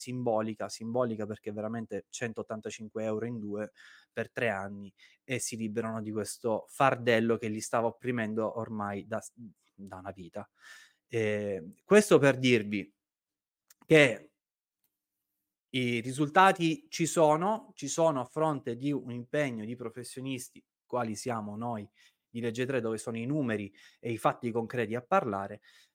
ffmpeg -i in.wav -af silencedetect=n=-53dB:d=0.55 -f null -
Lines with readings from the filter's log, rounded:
silence_start: 12.88
silence_end: 13.71 | silence_duration: 0.83
silence_start: 14.26
silence_end: 15.74 | silence_duration: 1.47